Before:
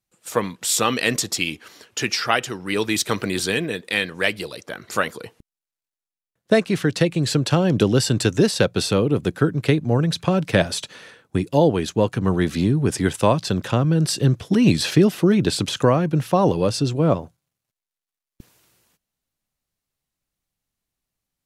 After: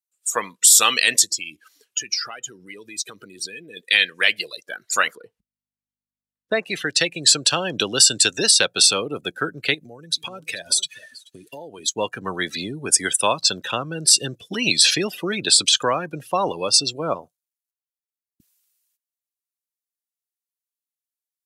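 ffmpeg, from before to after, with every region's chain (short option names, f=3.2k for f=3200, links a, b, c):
-filter_complex "[0:a]asettb=1/sr,asplit=3[a][b][c];[a]atrim=end=1.244[d];[b]atrim=start=1.24:end=3.77,asetpts=PTS-STARTPTS,afade=t=in:d=0.004:c=qsin,afade=t=out:st=2.526:d=0.004:c=qsin,lowshelf=f=420:g=8,acompressor=threshold=-30dB:ratio=6:attack=3.2:release=140:knee=1:detection=peak[e];[c]atrim=start=3.766[f];[d][e]acrossfade=d=0.004:c1=hsin:c2=qsin[g];[g][f]acrossfade=d=0.004:c1=qsin:c2=hsin,asettb=1/sr,asplit=3[h][i][j];[h]atrim=end=5.154[k];[i]atrim=start=5.15:end=6.63,asetpts=PTS-STARTPTS,afade=t=in:d=0.004:c=qsin,afade=t=out:st=1.476:d=0.004:c=qsin,lowpass=f=1.3k:p=1,aeval=exprs='val(0)+0.00224*(sin(2*PI*50*n/s)+sin(2*PI*2*50*n/s)/2+sin(2*PI*3*50*n/s)/3+sin(2*PI*4*50*n/s)/4+sin(2*PI*5*50*n/s)/5)':c=same[l];[j]atrim=start=6.626[m];[k][l]acrossfade=d=0.004:c1=hsin:c2=qsin[n];[n][m]acrossfade=d=0.004:c1=qsin:c2=hsin,asettb=1/sr,asplit=3[o][p][q];[o]atrim=end=9.744[r];[p]atrim=start=9.74:end=11.94,asetpts=PTS-STARTPTS,afade=t=in:d=0.004:c=qsin,afade=t=out:st=2.196:d=0.004:c=qsin,highshelf=f=5.5k:g=8,acompressor=threshold=-26dB:ratio=10:attack=3.2:release=140:knee=1:detection=peak,aecho=1:1:428|436:0.133|0.251,atrim=end_sample=97020[s];[q]atrim=start=11.936[t];[r][s]acrossfade=d=0.004:c1=hsin:c2=qsin[u];[u][t]acrossfade=d=0.004:c1=qsin:c2=hsin,afftdn=nr=26:nf=-32,aderivative,alimiter=level_in=18.5dB:limit=-1dB:release=50:level=0:latency=1,volume=-1dB"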